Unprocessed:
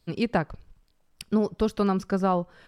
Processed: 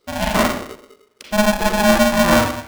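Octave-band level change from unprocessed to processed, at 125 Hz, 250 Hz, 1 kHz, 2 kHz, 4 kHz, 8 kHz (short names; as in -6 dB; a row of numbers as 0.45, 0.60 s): +5.0, +7.5, +11.0, +18.0, +19.0, +25.0 dB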